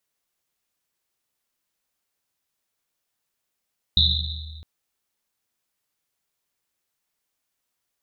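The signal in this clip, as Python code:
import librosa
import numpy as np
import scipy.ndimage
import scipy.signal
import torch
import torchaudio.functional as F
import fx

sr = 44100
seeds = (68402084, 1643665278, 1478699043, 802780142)

y = fx.risset_drum(sr, seeds[0], length_s=0.66, hz=77.0, decay_s=2.19, noise_hz=3800.0, noise_width_hz=500.0, noise_pct=55)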